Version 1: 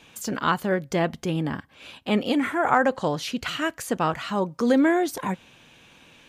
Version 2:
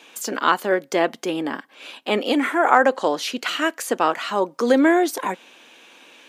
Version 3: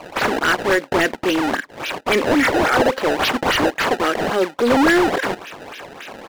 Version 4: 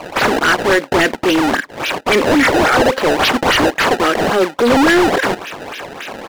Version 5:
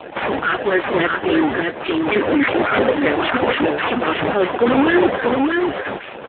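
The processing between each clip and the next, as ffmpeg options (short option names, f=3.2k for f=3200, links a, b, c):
-af "highpass=f=280:w=0.5412,highpass=f=280:w=1.3066,volume=5dB"
-filter_complex "[0:a]firequalizer=gain_entry='entry(380,0);entry(1000,-18);entry(1600,4)':delay=0.05:min_phase=1,acrusher=samples=23:mix=1:aa=0.000001:lfo=1:lforange=36.8:lforate=3.6,asplit=2[a][b];[b]highpass=f=720:p=1,volume=21dB,asoftclip=type=tanh:threshold=-6dB[c];[a][c]amix=inputs=2:normalize=0,lowpass=f=2.1k:p=1,volume=-6dB"
-af "asoftclip=type=tanh:threshold=-14dB,volume=7dB"
-af "flanger=delay=8.1:depth=3.7:regen=-84:speed=0.61:shape=sinusoidal,aecho=1:1:623:0.668,volume=2.5dB" -ar 8000 -c:a libopencore_amrnb -b:a 5150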